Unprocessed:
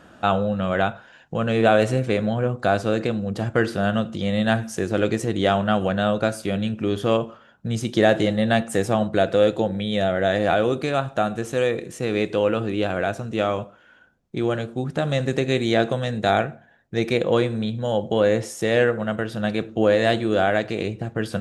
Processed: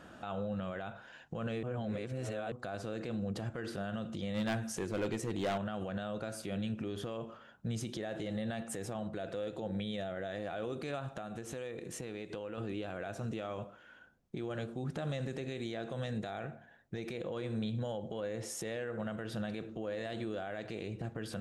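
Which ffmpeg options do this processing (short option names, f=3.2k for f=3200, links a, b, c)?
-filter_complex "[0:a]asettb=1/sr,asplit=3[a][b][c];[a]atrim=end=4.344[d];[b]atrim=start=4.34:end=5.58,asetpts=PTS-STARTPTS,afade=t=in:d=0.004:c=qsin,afade=t=out:st=1.236:d=0.004:c=qsin,asoftclip=type=hard:threshold=-18dB[e];[c]atrim=start=5.576[f];[d][e]acrossfade=d=0.004:c1=hsin:c2=qsin[g];[g][f]acrossfade=d=0.004:c1=qsin:c2=hsin,asettb=1/sr,asplit=3[h][i][j];[h]atrim=end=11.124[k];[i]atrim=start=11.12:end=12.58,asetpts=PTS-STARTPTS,afade=t=in:d=0.004:c=qsin,afade=t=out:st=1.456:d=0.004:c=qsin,acompressor=threshold=-34dB:ratio=8:attack=3.2:release=140:knee=1:detection=peak[l];[j]atrim=start=12.576[m];[k][l]acrossfade=d=0.004:c1=hsin:c2=qsin[n];[n][m]acrossfade=d=0.004:c1=qsin:c2=hsin,asplit=3[o][p][q];[o]atrim=end=1.632[r];[p]atrim=start=1.628:end=2.522,asetpts=PTS-STARTPTS,areverse[s];[q]atrim=start=2.518[t];[r][s]acrossfade=d=0.004:c1=hsin:c2=hsin[u];[u][t]acrossfade=d=0.004:c1=hsin:c2=hsin,acompressor=threshold=-27dB:ratio=3,alimiter=level_in=1dB:limit=-24dB:level=0:latency=1:release=49,volume=-1dB,volume=-4.5dB"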